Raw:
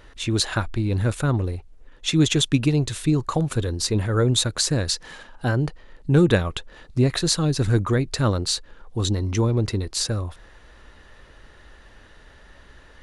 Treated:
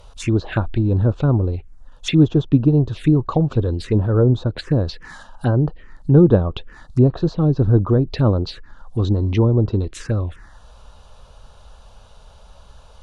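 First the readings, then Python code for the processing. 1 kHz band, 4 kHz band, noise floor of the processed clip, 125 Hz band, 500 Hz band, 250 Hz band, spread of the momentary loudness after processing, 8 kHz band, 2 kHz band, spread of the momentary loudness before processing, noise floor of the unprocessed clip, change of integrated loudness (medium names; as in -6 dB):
+0.5 dB, -9.0 dB, -46 dBFS, +5.5 dB, +5.0 dB, +5.5 dB, 11 LU, under -15 dB, -4.5 dB, 10 LU, -50 dBFS, +4.0 dB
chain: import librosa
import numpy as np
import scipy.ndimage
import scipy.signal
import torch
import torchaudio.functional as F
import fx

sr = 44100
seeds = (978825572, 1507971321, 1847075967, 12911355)

y = fx.env_lowpass_down(x, sr, base_hz=1100.0, full_db=-17.5)
y = fx.env_phaser(y, sr, low_hz=280.0, high_hz=2100.0, full_db=-20.5)
y = y * librosa.db_to_amplitude(5.5)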